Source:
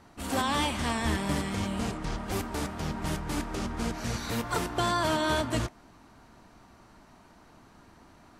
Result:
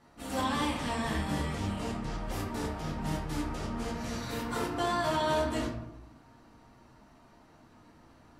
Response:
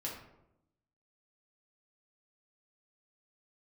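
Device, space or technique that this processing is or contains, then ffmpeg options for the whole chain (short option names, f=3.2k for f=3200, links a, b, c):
bathroom: -filter_complex "[1:a]atrim=start_sample=2205[a];[0:a][a]afir=irnorm=-1:irlink=0,volume=-4dB"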